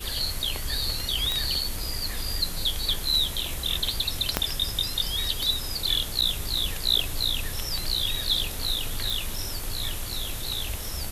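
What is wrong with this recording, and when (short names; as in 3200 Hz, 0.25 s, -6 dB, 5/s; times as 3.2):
1.32 pop
4.37 pop -5 dBFS
6.21–6.22 gap 8 ms
9.1 pop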